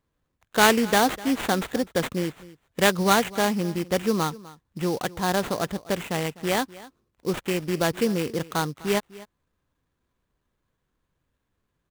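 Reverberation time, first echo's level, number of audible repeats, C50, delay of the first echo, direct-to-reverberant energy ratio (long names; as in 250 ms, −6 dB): no reverb audible, −19.5 dB, 1, no reverb audible, 251 ms, no reverb audible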